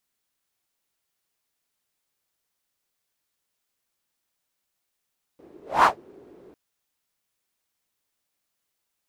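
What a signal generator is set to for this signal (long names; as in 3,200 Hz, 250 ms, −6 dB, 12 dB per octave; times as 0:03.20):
pass-by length 1.15 s, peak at 0:00.46, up 0.24 s, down 0.13 s, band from 370 Hz, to 1,100 Hz, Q 4.6, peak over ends 34 dB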